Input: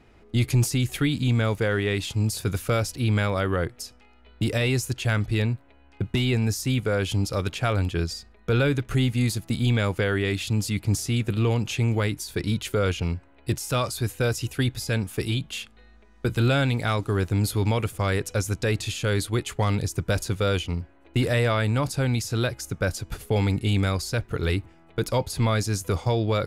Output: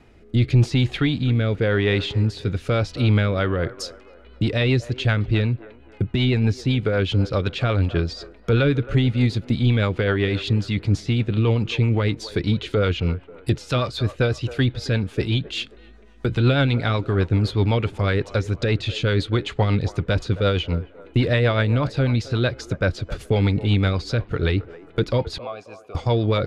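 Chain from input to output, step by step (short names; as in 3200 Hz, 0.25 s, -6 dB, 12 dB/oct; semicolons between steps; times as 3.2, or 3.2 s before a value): 25.38–25.95 vowel filter a; dynamic EQ 3900 Hz, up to +7 dB, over -48 dBFS, Q 2.1; in parallel at -8 dB: soft clip -24 dBFS, distortion -10 dB; on the sum: rotary speaker horn 0.9 Hz, later 8 Hz, at 3.03; treble ducked by the level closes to 2900 Hz, closed at -23 dBFS; on a send: band-limited delay 0.268 s, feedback 38%, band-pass 720 Hz, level -14 dB; on the sum: gain +3.5 dB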